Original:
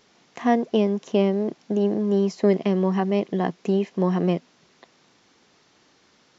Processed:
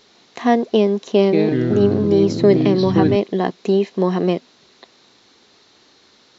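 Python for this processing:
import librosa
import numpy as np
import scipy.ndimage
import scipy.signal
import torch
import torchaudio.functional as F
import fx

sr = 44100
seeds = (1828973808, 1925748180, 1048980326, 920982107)

y = fx.echo_pitch(x, sr, ms=155, semitones=-4, count=3, db_per_echo=-3.0, at=(1.03, 3.16))
y = fx.graphic_eq_31(y, sr, hz=(160, 400, 4000), db=(-7, 3, 10))
y = y * 10.0 ** (4.5 / 20.0)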